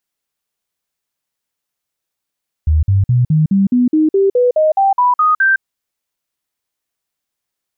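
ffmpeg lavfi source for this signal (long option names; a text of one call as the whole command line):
ffmpeg -f lavfi -i "aevalsrc='0.376*clip(min(mod(t,0.21),0.16-mod(t,0.21))/0.005,0,1)*sin(2*PI*77.7*pow(2,floor(t/0.21)/3)*mod(t,0.21))':duration=2.94:sample_rate=44100" out.wav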